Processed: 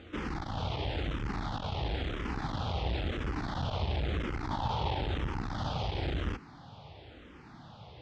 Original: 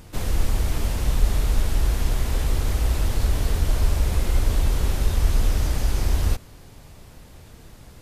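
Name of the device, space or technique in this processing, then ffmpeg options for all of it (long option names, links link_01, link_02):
barber-pole phaser into a guitar amplifier: -filter_complex "[0:a]asettb=1/sr,asplit=3[link_01][link_02][link_03];[link_01]atrim=end=4.484[link_04];[link_02]atrim=start=4.48:end=5.39,asetpts=PTS-STARTPTS,afade=type=in:duration=0.004:curve=qsin,afade=type=out:start_time=0.906:duration=0.004:curve=qsin,equalizer=frequency=900:width_type=o:width=0.25:gain=11[link_05];[link_03]atrim=start=5.386[link_06];[link_04][link_05]acrossfade=duration=0.004:curve1=hsin:curve2=qsin[link_07];[link_07][link_06]acrossfade=duration=0.004:curve1=qsin:curve2=hsin,asplit=2[link_08][link_09];[link_09]afreqshift=-0.98[link_10];[link_08][link_10]amix=inputs=2:normalize=1,asoftclip=type=tanh:threshold=-20dB,highpass=87,equalizer=frequency=300:width_type=q:width=4:gain=4,equalizer=frequency=810:width_type=q:width=4:gain=7,equalizer=frequency=1300:width_type=q:width=4:gain=4,equalizer=frequency=3300:width_type=q:width=4:gain=5,lowpass=frequency=4200:width=0.5412,lowpass=frequency=4200:width=1.3066"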